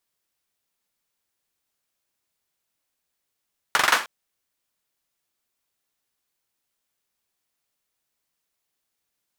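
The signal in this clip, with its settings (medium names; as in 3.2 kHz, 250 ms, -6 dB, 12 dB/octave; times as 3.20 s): hand clap length 0.31 s, bursts 5, apart 43 ms, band 1.3 kHz, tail 0.32 s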